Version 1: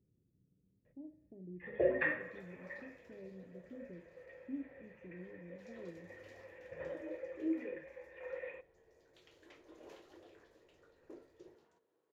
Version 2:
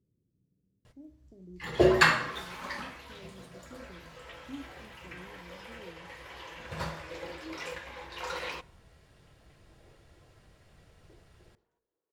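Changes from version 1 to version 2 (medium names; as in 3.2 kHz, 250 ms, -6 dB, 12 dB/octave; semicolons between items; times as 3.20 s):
first sound: remove cascade formant filter e; second sound -9.0 dB; master: add distance through air 54 m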